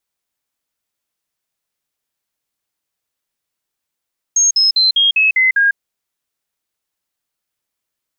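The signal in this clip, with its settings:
stepped sweep 6,500 Hz down, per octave 3, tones 7, 0.15 s, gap 0.05 s −9 dBFS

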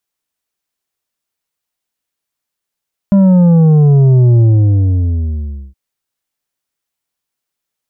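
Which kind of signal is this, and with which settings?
bass drop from 200 Hz, over 2.62 s, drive 7 dB, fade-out 1.34 s, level −5.5 dB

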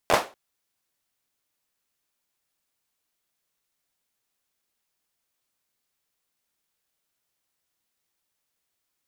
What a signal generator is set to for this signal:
synth clap length 0.24 s, apart 12 ms, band 660 Hz, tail 0.28 s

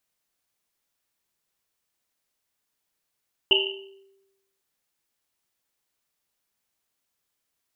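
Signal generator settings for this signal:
drum after Risset, pitch 390 Hz, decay 1.05 s, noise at 2,900 Hz, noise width 320 Hz, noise 65%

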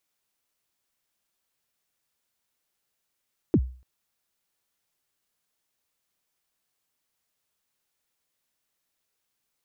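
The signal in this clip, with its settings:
synth kick length 0.29 s, from 400 Hz, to 63 Hz, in 58 ms, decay 0.40 s, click off, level −13 dB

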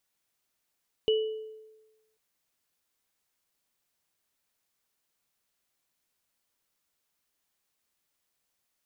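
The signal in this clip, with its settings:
inharmonic partials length 1.09 s, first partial 436 Hz, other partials 2,950 Hz, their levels −8 dB, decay 1.15 s, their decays 0.57 s, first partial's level −20 dB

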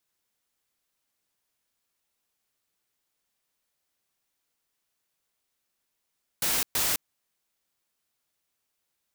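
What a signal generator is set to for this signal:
noise bursts white, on 0.21 s, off 0.12 s, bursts 2, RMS −26 dBFS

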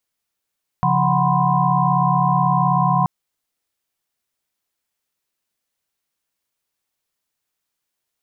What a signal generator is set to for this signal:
held notes C#3/F3/F#5/B5/C6 sine, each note −20.5 dBFS 2.23 s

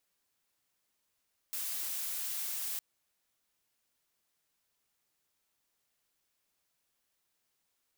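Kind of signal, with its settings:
noise blue, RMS −37 dBFS 1.26 s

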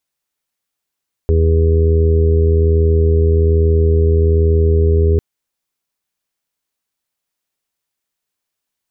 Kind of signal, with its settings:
steady harmonic partials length 3.90 s, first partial 81.2 Hz, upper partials −14.5/−18.5/−19/−6/−16.5 dB, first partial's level −10 dB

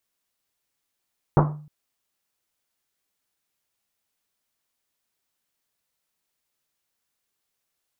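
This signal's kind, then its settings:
drum after Risset length 0.31 s, pitch 150 Hz, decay 0.56 s, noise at 680 Hz, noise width 1,000 Hz, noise 35%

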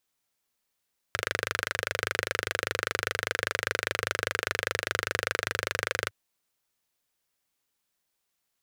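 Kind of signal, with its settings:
pulse-train model of a single-cylinder engine, steady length 4.96 s, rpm 3,000, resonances 100/490/1,500 Hz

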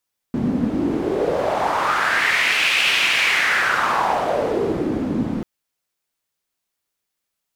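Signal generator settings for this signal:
wind from filtered noise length 5.09 s, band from 230 Hz, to 2,600 Hz, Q 3.4, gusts 1, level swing 4.5 dB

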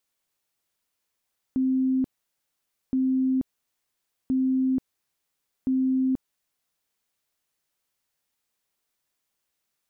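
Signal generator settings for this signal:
tone bursts 261 Hz, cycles 126, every 1.37 s, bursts 4, −20 dBFS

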